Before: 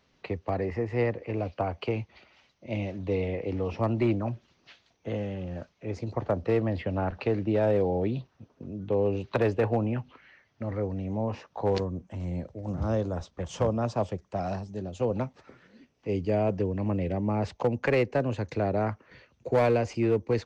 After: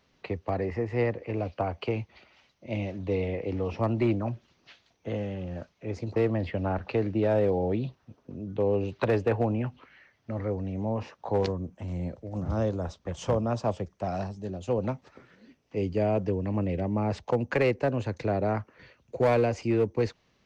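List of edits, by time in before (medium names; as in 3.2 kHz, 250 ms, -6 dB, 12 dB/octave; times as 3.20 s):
6.16–6.48 s: delete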